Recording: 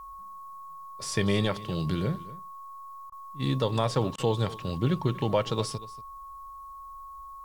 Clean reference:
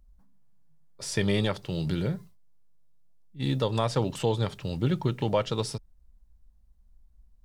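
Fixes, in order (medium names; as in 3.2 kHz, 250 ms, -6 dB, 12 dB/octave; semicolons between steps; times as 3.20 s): band-stop 1.1 kHz, Q 30; interpolate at 3.10/4.16 s, 20 ms; expander -36 dBFS, range -21 dB; inverse comb 237 ms -18 dB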